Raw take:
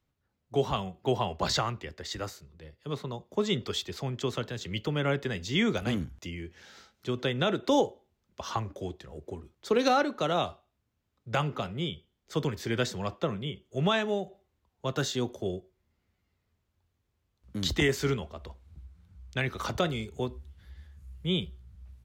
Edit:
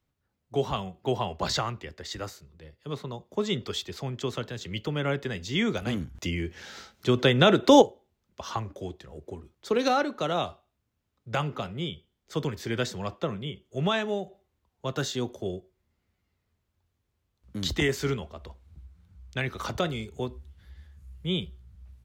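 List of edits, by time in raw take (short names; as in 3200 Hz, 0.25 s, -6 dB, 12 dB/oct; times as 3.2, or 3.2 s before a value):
6.15–7.82 gain +8.5 dB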